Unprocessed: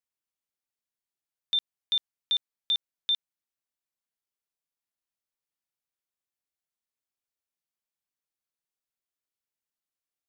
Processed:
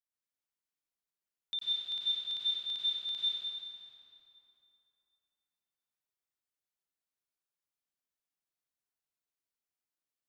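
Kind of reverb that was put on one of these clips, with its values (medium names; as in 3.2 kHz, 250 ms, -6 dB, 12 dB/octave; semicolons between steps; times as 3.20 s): plate-style reverb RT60 3.1 s, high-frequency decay 0.7×, pre-delay 80 ms, DRR -7.5 dB; trim -10.5 dB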